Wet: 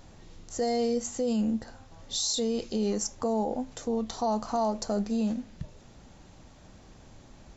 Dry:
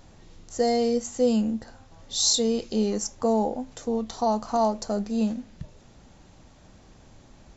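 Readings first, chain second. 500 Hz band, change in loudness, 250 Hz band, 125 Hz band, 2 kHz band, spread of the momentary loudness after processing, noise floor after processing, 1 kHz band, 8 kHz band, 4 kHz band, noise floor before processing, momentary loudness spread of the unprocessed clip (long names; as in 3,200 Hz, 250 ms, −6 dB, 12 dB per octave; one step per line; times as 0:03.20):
−4.5 dB, −4.5 dB, −3.5 dB, −2.5 dB, −3.0 dB, 9 LU, −53 dBFS, −4.5 dB, can't be measured, −5.5 dB, −53 dBFS, 12 LU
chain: brickwall limiter −20.5 dBFS, peak gain reduction 10 dB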